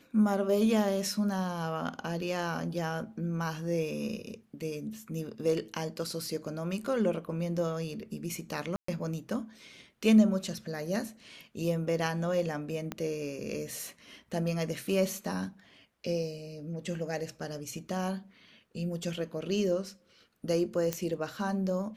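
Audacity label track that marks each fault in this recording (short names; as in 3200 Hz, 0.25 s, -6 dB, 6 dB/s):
8.760000	8.880000	gap 0.124 s
12.920000	12.920000	pop -19 dBFS
20.930000	20.930000	pop -15 dBFS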